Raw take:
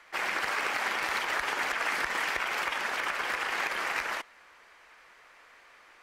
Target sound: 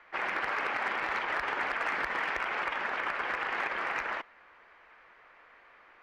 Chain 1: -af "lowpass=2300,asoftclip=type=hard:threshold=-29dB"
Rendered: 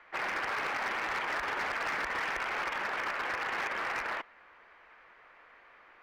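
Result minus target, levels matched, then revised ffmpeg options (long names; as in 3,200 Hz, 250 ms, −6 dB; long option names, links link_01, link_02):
hard clipping: distortion +12 dB
-af "lowpass=2300,asoftclip=type=hard:threshold=-23dB"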